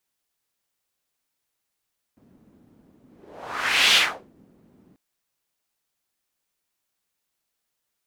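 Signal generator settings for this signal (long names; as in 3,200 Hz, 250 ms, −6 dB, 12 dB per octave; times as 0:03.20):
pass-by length 2.79 s, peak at 0:01.78, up 0.97 s, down 0.37 s, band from 230 Hz, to 3,100 Hz, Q 2.1, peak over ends 39.5 dB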